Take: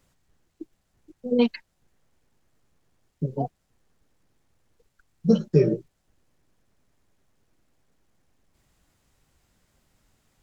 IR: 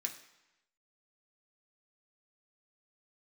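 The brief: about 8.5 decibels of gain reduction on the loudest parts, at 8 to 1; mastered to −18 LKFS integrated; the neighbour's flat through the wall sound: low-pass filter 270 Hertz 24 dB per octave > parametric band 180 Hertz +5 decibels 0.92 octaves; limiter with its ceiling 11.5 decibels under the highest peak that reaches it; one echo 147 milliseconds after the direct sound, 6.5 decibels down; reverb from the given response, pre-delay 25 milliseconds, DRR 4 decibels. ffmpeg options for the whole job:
-filter_complex "[0:a]acompressor=threshold=-21dB:ratio=8,alimiter=level_in=1dB:limit=-24dB:level=0:latency=1,volume=-1dB,aecho=1:1:147:0.473,asplit=2[link_01][link_02];[1:a]atrim=start_sample=2205,adelay=25[link_03];[link_02][link_03]afir=irnorm=-1:irlink=0,volume=-3.5dB[link_04];[link_01][link_04]amix=inputs=2:normalize=0,lowpass=frequency=270:width=0.5412,lowpass=frequency=270:width=1.3066,equalizer=frequency=180:width_type=o:width=0.92:gain=5,volume=16dB"

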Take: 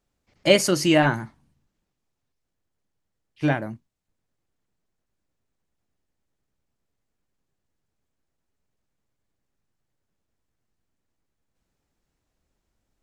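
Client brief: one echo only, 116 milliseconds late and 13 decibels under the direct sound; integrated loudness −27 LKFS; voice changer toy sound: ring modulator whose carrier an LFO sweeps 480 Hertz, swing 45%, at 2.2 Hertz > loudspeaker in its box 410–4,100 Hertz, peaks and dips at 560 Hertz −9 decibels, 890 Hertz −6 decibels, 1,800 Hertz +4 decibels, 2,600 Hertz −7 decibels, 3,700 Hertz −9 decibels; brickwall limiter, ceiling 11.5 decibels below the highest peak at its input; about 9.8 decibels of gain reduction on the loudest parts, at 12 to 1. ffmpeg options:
ffmpeg -i in.wav -af "acompressor=threshold=-20dB:ratio=12,alimiter=limit=-23dB:level=0:latency=1,aecho=1:1:116:0.224,aeval=exprs='val(0)*sin(2*PI*480*n/s+480*0.45/2.2*sin(2*PI*2.2*n/s))':channel_layout=same,highpass=410,equalizer=frequency=560:width_type=q:width=4:gain=-9,equalizer=frequency=890:width_type=q:width=4:gain=-6,equalizer=frequency=1800:width_type=q:width=4:gain=4,equalizer=frequency=2600:width_type=q:width=4:gain=-7,equalizer=frequency=3700:width_type=q:width=4:gain=-9,lowpass=frequency=4100:width=0.5412,lowpass=frequency=4100:width=1.3066,volume=15dB" out.wav

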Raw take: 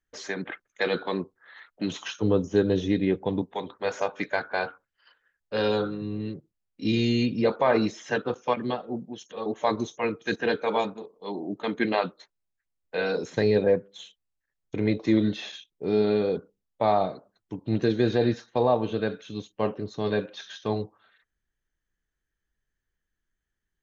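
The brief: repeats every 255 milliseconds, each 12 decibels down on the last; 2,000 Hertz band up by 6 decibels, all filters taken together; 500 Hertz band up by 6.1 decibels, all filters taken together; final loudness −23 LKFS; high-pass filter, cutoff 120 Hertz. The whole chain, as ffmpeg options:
ffmpeg -i in.wav -af "highpass=120,equalizer=frequency=500:width_type=o:gain=7,equalizer=frequency=2000:width_type=o:gain=7.5,aecho=1:1:255|510|765:0.251|0.0628|0.0157,volume=-0.5dB" out.wav

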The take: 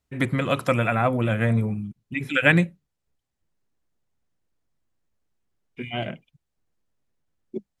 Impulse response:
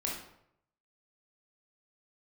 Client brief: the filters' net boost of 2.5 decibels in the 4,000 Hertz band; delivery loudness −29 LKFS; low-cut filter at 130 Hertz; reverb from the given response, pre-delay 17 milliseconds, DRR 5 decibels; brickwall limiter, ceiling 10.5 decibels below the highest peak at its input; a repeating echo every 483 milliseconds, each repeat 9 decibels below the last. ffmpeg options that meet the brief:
-filter_complex "[0:a]highpass=130,equalizer=frequency=4000:width_type=o:gain=3.5,alimiter=limit=-12dB:level=0:latency=1,aecho=1:1:483|966|1449|1932:0.355|0.124|0.0435|0.0152,asplit=2[link_01][link_02];[1:a]atrim=start_sample=2205,adelay=17[link_03];[link_02][link_03]afir=irnorm=-1:irlink=0,volume=-8.5dB[link_04];[link_01][link_04]amix=inputs=2:normalize=0,volume=-4dB"

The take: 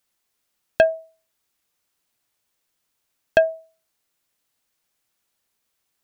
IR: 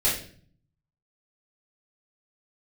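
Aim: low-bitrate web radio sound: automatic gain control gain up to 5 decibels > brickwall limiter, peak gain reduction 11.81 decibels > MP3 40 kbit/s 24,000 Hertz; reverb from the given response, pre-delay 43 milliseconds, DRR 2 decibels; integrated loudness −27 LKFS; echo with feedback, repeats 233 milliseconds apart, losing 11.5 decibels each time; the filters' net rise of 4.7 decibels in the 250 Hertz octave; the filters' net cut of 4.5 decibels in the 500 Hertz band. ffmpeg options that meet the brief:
-filter_complex "[0:a]equalizer=frequency=250:width_type=o:gain=9,equalizer=frequency=500:width_type=o:gain=-8.5,aecho=1:1:233|466|699:0.266|0.0718|0.0194,asplit=2[link_01][link_02];[1:a]atrim=start_sample=2205,adelay=43[link_03];[link_02][link_03]afir=irnorm=-1:irlink=0,volume=-14dB[link_04];[link_01][link_04]amix=inputs=2:normalize=0,dynaudnorm=maxgain=5dB,alimiter=limit=-17dB:level=0:latency=1,volume=2dB" -ar 24000 -c:a libmp3lame -b:a 40k

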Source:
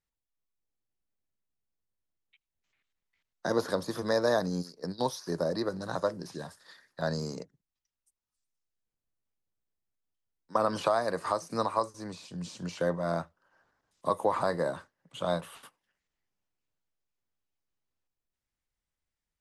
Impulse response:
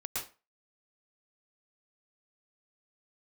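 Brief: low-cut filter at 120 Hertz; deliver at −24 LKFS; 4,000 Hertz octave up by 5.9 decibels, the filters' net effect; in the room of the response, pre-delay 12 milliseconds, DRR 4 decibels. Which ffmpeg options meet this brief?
-filter_complex "[0:a]highpass=120,equalizer=frequency=4000:width_type=o:gain=7,asplit=2[link_01][link_02];[1:a]atrim=start_sample=2205,adelay=12[link_03];[link_02][link_03]afir=irnorm=-1:irlink=0,volume=-6.5dB[link_04];[link_01][link_04]amix=inputs=2:normalize=0,volume=6.5dB"

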